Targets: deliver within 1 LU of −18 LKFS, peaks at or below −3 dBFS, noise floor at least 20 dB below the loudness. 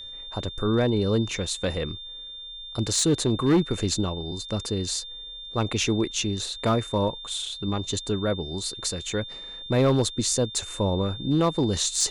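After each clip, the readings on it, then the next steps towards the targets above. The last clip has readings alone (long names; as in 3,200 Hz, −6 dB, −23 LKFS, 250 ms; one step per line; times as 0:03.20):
share of clipped samples 0.7%; peaks flattened at −15.0 dBFS; interfering tone 3,600 Hz; level of the tone −37 dBFS; integrated loudness −26.0 LKFS; sample peak −15.0 dBFS; target loudness −18.0 LKFS
→ clipped peaks rebuilt −15 dBFS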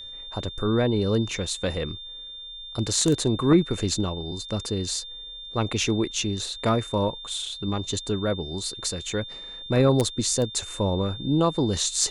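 share of clipped samples 0.0%; interfering tone 3,600 Hz; level of the tone −37 dBFS
→ notch filter 3,600 Hz, Q 30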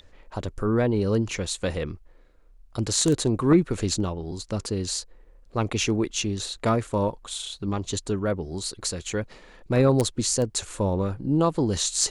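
interfering tone none found; integrated loudness −25.5 LKFS; sample peak −6.0 dBFS; target loudness −18.0 LKFS
→ level +7.5 dB
brickwall limiter −3 dBFS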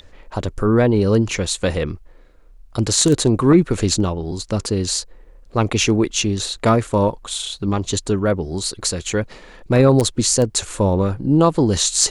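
integrated loudness −18.5 LKFS; sample peak −3.0 dBFS; background noise floor −45 dBFS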